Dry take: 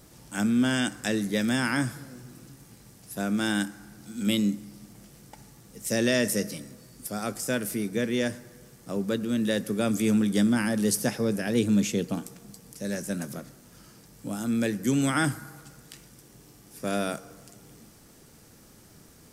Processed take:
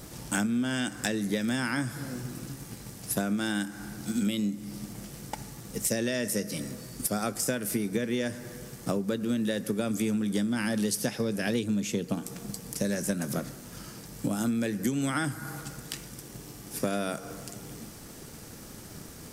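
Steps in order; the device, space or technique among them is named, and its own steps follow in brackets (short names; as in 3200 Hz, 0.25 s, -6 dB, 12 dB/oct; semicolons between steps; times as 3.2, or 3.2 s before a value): drum-bus smash (transient shaper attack +5 dB, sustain 0 dB; compressor 12:1, threshold -33 dBFS, peak gain reduction 17 dB; soft clip -22 dBFS, distortion -27 dB); 10.47–11.64 dynamic EQ 3500 Hz, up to +5 dB, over -57 dBFS, Q 1; gain +8 dB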